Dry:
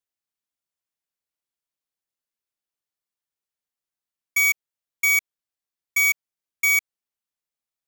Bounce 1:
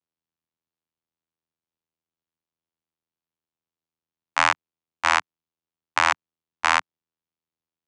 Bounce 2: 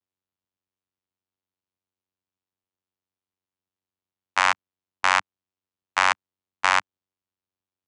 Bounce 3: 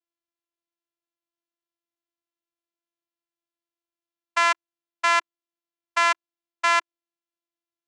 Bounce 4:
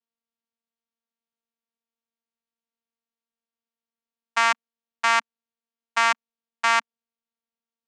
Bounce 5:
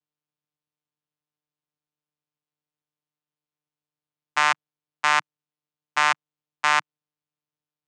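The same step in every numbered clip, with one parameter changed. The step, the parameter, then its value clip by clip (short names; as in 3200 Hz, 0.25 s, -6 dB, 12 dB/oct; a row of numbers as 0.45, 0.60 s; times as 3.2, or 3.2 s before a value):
vocoder, frequency: 82, 93, 340, 230, 150 Hz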